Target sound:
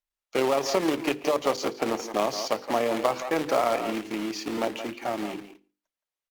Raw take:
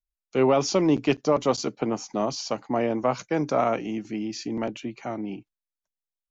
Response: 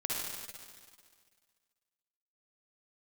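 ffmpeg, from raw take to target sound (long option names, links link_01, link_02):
-filter_complex "[0:a]asplit=2[link_01][link_02];[link_02]adelay=170,highpass=300,lowpass=3400,asoftclip=type=hard:threshold=-19.5dB,volume=-10dB[link_03];[link_01][link_03]amix=inputs=2:normalize=0,acrusher=bits=2:mode=log:mix=0:aa=0.000001,highshelf=frequency=6500:gain=-3,asplit=2[link_04][link_05];[1:a]atrim=start_sample=2205,afade=type=out:start_time=0.21:duration=0.01,atrim=end_sample=9702[link_06];[link_05][link_06]afir=irnorm=-1:irlink=0,volume=-25dB[link_07];[link_04][link_07]amix=inputs=2:normalize=0,acompressor=threshold=-22dB:ratio=4,bass=frequency=250:gain=-12,treble=frequency=4000:gain=-5,bandreject=frequency=1500:width=27,tremolo=f=36:d=0.261,bandreject=frequency=50:width_type=h:width=6,bandreject=frequency=100:width_type=h:width=6,bandreject=frequency=150:width_type=h:width=6,bandreject=frequency=200:width_type=h:width=6,bandreject=frequency=250:width_type=h:width=6,bandreject=frequency=300:width_type=h:width=6,bandreject=frequency=350:width_type=h:width=6,bandreject=frequency=400:width_type=h:width=6,bandreject=frequency=450:width_type=h:width=6,bandreject=frequency=500:width_type=h:width=6,volume=5dB" -ar 48000 -c:a libopus -b:a 48k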